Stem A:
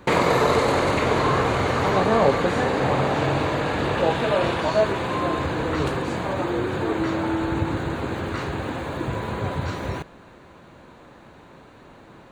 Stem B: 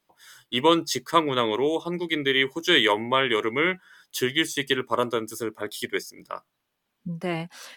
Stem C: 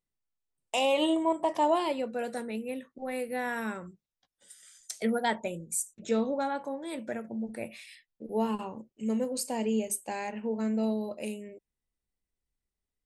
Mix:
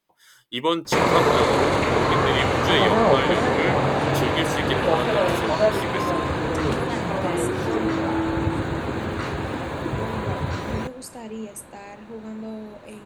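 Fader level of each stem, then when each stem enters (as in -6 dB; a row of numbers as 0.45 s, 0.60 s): +0.5 dB, -3.0 dB, -5.0 dB; 0.85 s, 0.00 s, 1.65 s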